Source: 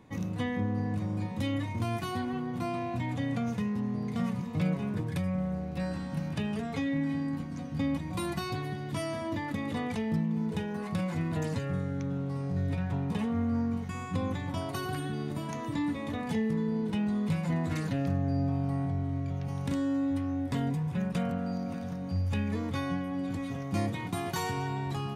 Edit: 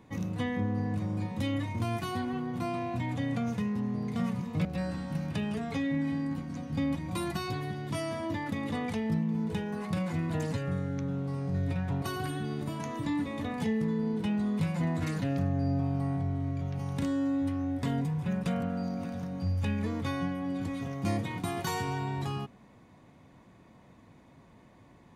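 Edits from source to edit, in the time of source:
4.65–5.67 s: delete
13.04–14.71 s: delete

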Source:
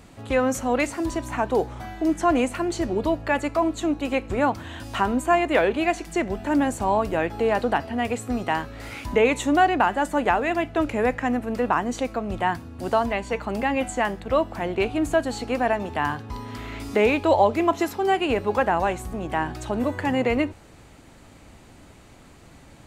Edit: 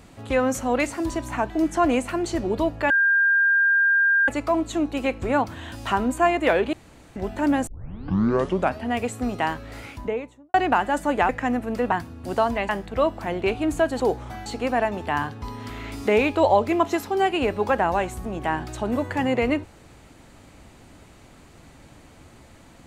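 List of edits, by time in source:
1.50–1.96 s: move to 15.34 s
3.36 s: add tone 1.6 kHz -15.5 dBFS 1.38 s
5.81–6.24 s: room tone
6.75 s: tape start 1.14 s
8.68–9.62 s: studio fade out
10.37–11.09 s: delete
11.72–12.47 s: delete
13.24–14.03 s: delete

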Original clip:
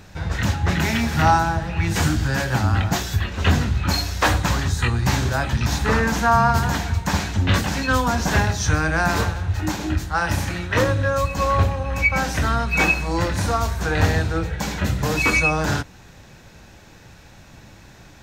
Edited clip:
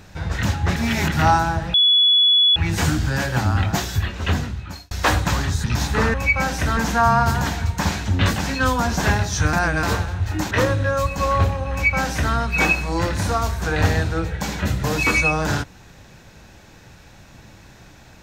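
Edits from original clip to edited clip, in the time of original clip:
0.76–1.12 s: reverse
1.74 s: add tone 3.4 kHz -11.5 dBFS 0.82 s
3.22–4.09 s: fade out
4.82–5.55 s: delete
8.81–9.11 s: reverse
9.79–10.70 s: delete
11.90–12.53 s: copy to 6.05 s

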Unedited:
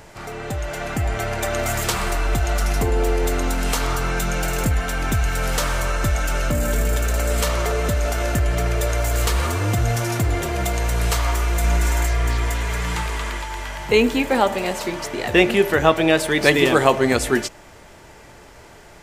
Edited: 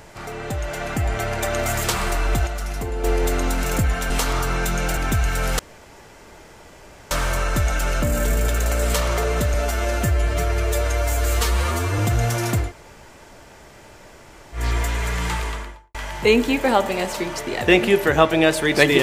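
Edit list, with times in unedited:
2.47–3.04 s: gain -7 dB
4.51–4.97 s: move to 3.64 s
5.59 s: insert room tone 1.52 s
8.02–9.65 s: stretch 1.5×
10.32–12.26 s: room tone, crossfade 0.16 s
13.05–13.61 s: studio fade out

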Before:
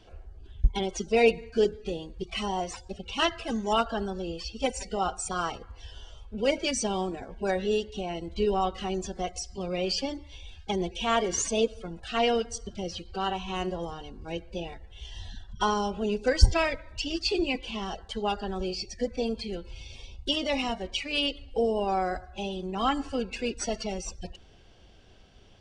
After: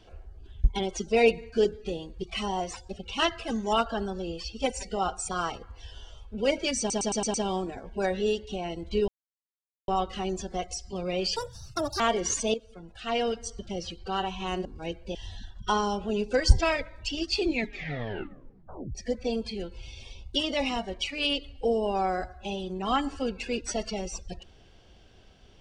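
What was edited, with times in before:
6.79 s: stutter 0.11 s, 6 plays
8.53 s: insert silence 0.80 s
10.01–11.08 s: speed 167%
11.62–12.68 s: fade in, from -12.5 dB
13.73–14.11 s: delete
14.61–15.08 s: delete
17.35 s: tape stop 1.53 s

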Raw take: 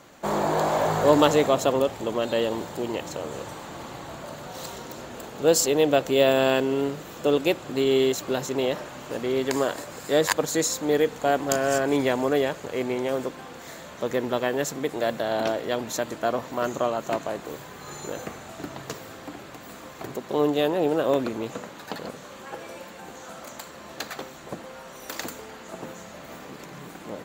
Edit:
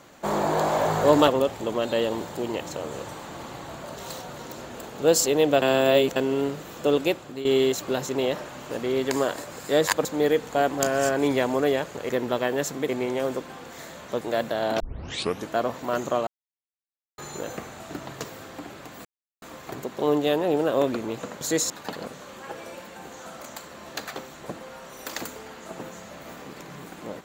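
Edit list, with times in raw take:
1.28–1.68 s: delete
4.37–4.79 s: reverse
6.02–6.56 s: reverse
7.42–7.85 s: fade out, to -12 dB
10.45–10.74 s: move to 21.73 s
14.10–14.90 s: move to 12.78 s
15.49 s: tape start 0.68 s
16.96–17.87 s: mute
19.74 s: insert silence 0.37 s

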